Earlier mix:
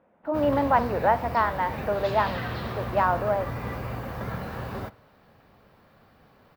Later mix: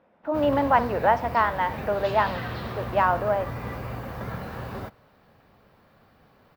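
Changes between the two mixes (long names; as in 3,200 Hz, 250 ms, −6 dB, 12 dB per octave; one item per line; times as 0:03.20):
speech: remove high-frequency loss of the air 320 metres
background: send −6.5 dB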